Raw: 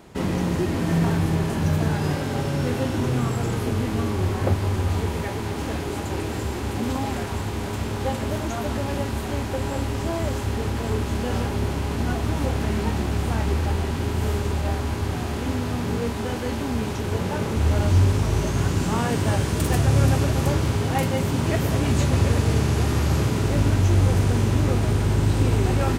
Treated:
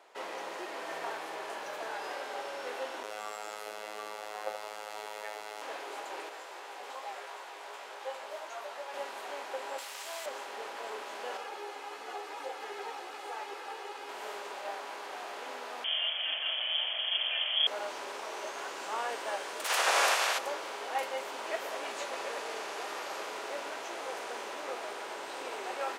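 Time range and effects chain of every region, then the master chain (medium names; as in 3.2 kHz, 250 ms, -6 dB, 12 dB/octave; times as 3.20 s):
3.03–5.62 s: treble shelf 6.1 kHz +6 dB + robot voice 106 Hz + delay 74 ms -7 dB
6.29–8.94 s: high-pass 370 Hz + chorus 2.7 Hz, delay 16.5 ms, depth 2.7 ms
9.78–10.26 s: tilt EQ +4.5 dB/octave + valve stage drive 20 dB, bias 0.7
11.37–14.09 s: comb 2.4 ms, depth 55% + three-phase chorus
15.84–17.67 s: frequency inversion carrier 3.3 kHz + small resonant body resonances 230/620 Hz, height 11 dB, ringing for 30 ms
19.64–20.37 s: spectral peaks clipped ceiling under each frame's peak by 29 dB + high-pass 290 Hz
whole clip: high-pass 530 Hz 24 dB/octave; treble shelf 6.4 kHz -10.5 dB; trim -6 dB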